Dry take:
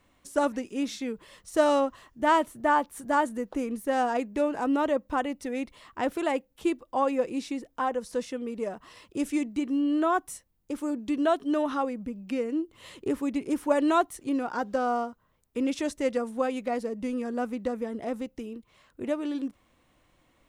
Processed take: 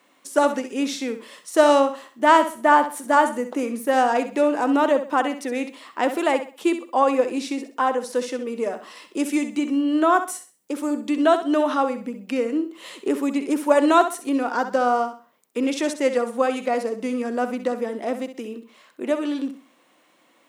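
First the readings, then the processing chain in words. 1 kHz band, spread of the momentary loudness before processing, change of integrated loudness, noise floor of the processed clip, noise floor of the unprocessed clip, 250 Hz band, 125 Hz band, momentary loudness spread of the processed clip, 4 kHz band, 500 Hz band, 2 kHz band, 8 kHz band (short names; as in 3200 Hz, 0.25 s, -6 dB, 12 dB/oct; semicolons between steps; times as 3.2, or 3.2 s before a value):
+8.0 dB, 11 LU, +7.0 dB, -60 dBFS, -68 dBFS, +5.0 dB, n/a, 12 LU, +8.5 dB, +7.0 dB, +8.0 dB, +8.5 dB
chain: HPF 210 Hz 24 dB/oct; low shelf 320 Hz -5 dB; on a send: flutter echo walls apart 11.1 m, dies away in 0.37 s; on the sum: gain +8 dB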